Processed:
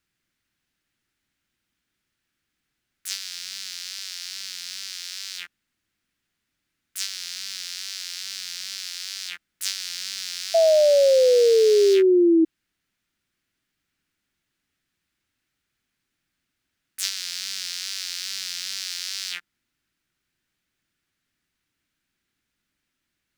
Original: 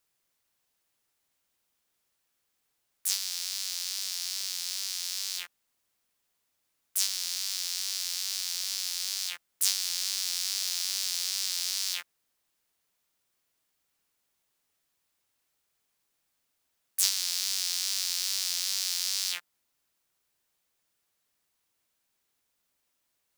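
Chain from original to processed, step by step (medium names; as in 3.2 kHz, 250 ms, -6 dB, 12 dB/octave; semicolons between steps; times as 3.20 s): low-pass 1.7 kHz 6 dB/octave; high-order bell 690 Hz -12 dB; painted sound fall, 10.54–12.45 s, 320–670 Hz -25 dBFS; trim +9 dB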